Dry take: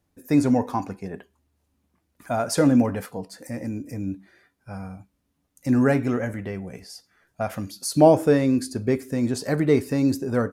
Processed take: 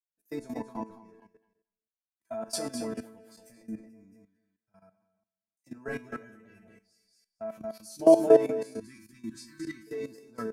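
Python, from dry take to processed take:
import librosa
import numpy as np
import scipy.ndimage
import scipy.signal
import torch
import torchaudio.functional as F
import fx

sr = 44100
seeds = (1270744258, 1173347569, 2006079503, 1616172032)

y = fx.highpass(x, sr, hz=110.0, slope=24, at=(3.79, 5.88))
y = fx.resonator_bank(y, sr, root=57, chord='fifth', decay_s=0.35)
y = fx.echo_feedback(y, sr, ms=224, feedback_pct=29, wet_db=-6)
y = fx.spec_erase(y, sr, start_s=8.81, length_s=1.06, low_hz=380.0, high_hz=990.0)
y = fx.level_steps(y, sr, step_db=14)
y = fx.band_widen(y, sr, depth_pct=70)
y = F.gain(torch.from_numpy(y), 8.0).numpy()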